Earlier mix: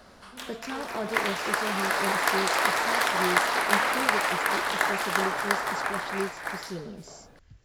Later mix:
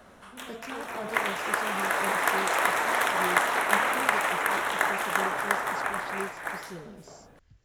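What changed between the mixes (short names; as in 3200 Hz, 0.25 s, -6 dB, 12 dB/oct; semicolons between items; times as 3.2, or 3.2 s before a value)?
speech -5.5 dB; background: add bell 4700 Hz -14.5 dB 0.4 oct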